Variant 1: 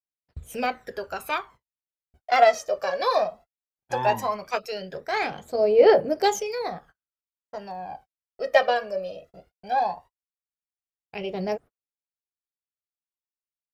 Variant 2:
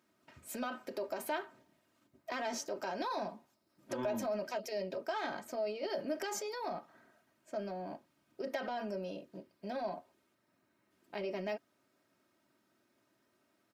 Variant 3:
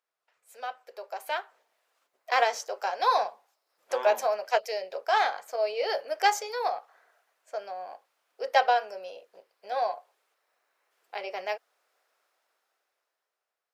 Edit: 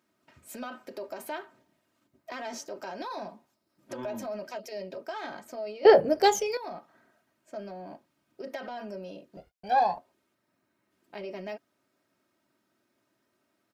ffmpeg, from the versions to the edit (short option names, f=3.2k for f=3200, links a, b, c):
-filter_complex "[0:a]asplit=2[a][b];[1:a]asplit=3[c][d][e];[c]atrim=end=5.852[f];[a]atrim=start=5.848:end=6.572[g];[d]atrim=start=6.568:end=9.372[h];[b]atrim=start=9.368:end=9.982[i];[e]atrim=start=9.978[j];[f][g]acrossfade=d=0.004:c1=hsin:c2=hsin[k];[k][h]acrossfade=d=0.004:c1=hsin:c2=hsin[l];[l][i]acrossfade=d=0.004:c1=hsin:c2=hsin[m];[m][j]acrossfade=d=0.004:c1=hsin:c2=hsin"